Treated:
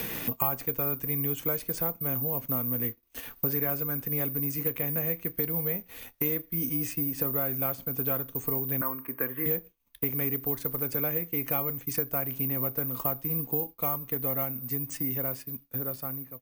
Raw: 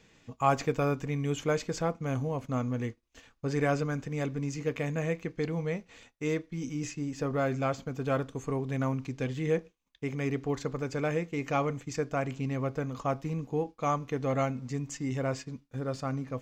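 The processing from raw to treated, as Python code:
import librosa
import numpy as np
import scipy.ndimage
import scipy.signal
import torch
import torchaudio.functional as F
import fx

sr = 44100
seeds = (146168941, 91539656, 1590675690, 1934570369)

y = fx.fade_out_tail(x, sr, length_s=2.89)
y = fx.cabinet(y, sr, low_hz=330.0, low_slope=12, high_hz=2100.0, hz=(730.0, 1100.0, 1700.0), db=(-6, 8, 7), at=(8.81, 9.46))
y = (np.kron(scipy.signal.resample_poly(y, 1, 3), np.eye(3)[0]) * 3)[:len(y)]
y = fx.band_squash(y, sr, depth_pct=100)
y = y * 10.0 ** (-4.0 / 20.0)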